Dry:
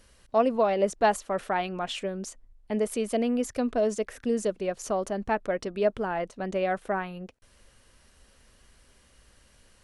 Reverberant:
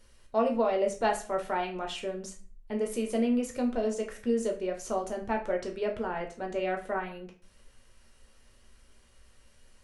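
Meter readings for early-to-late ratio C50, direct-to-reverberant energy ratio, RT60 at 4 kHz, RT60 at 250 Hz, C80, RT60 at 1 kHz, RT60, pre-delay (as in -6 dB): 10.5 dB, 1.5 dB, 0.30 s, 0.50 s, 16.0 dB, 0.40 s, 0.40 s, 5 ms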